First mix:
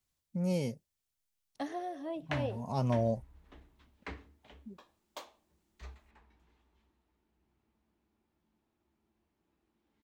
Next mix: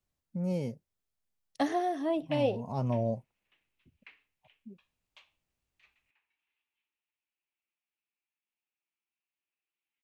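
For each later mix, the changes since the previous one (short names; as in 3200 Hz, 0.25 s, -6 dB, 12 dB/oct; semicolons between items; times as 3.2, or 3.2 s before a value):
first voice: add high shelf 2100 Hz -9 dB; second voice +9.0 dB; background: add band-pass 2600 Hz, Q 4.3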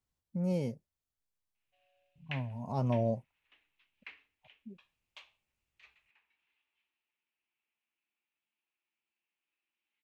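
second voice: muted; background +5.0 dB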